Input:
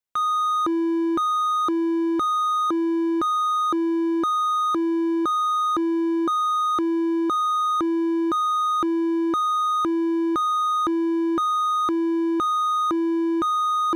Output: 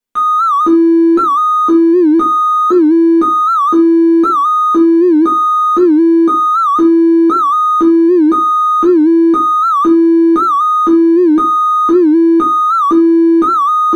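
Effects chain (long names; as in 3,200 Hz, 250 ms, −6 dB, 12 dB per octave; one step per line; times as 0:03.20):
parametric band 250 Hz +12 dB 0.92 octaves
convolution reverb RT60 0.30 s, pre-delay 4 ms, DRR −4 dB
wow of a warped record 78 rpm, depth 160 cents
level +1.5 dB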